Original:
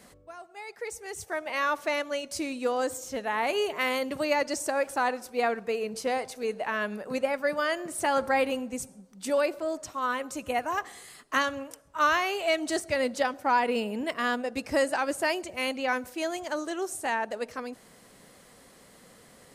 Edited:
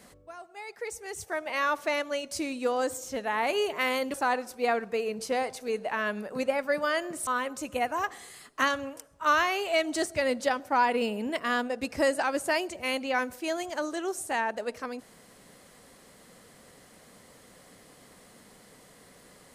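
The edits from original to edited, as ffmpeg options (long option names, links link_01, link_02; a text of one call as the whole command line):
ffmpeg -i in.wav -filter_complex "[0:a]asplit=3[link_01][link_02][link_03];[link_01]atrim=end=4.142[link_04];[link_02]atrim=start=4.888:end=8.022[link_05];[link_03]atrim=start=10.008[link_06];[link_04][link_05]acrossfade=duration=0.004:curve1=hsin:curve2=hsin[link_07];[link_07][link_06]acrossfade=duration=0.004:curve1=hsin:curve2=hsin" out.wav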